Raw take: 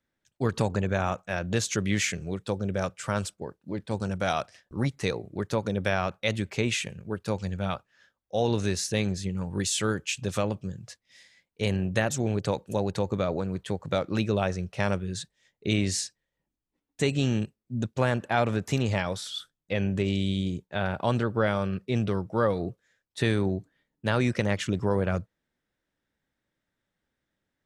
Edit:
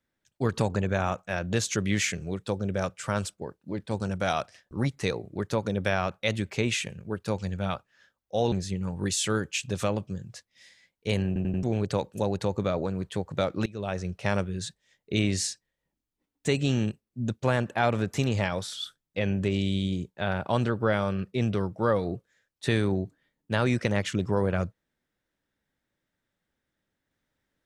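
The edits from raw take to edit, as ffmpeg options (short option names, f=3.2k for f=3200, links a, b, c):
-filter_complex "[0:a]asplit=7[a][b][c][d][e][f][g];[a]atrim=end=8.522[h];[b]atrim=start=9.058:end=11.902[i];[c]atrim=start=11.808:end=11.902[j];[d]atrim=start=11.808:end=11.902[k];[e]atrim=start=11.808:end=11.902[l];[f]atrim=start=12.168:end=14.2,asetpts=PTS-STARTPTS,afade=t=out:st=2.028:d=0.004:c=hsin:silence=0.0707946[m];[g]atrim=start=14.2,asetpts=PTS-STARTPTS,afade=t=in:d=0.43:silence=0.0707946[n];[h][i]acrossfade=d=0.004:c1=hsin:c2=hsin[o];[o][j]acrossfade=d=0.004:c1=hsin:c2=hsin[p];[p][k]acrossfade=d=0.004:c1=hsin:c2=hsin[q];[q][l]acrossfade=d=0.004:c1=hsin:c2=hsin[r];[m][n]concat=n=2:v=0:a=1[s];[r][s]acrossfade=d=0.004:c1=hsin:c2=hsin"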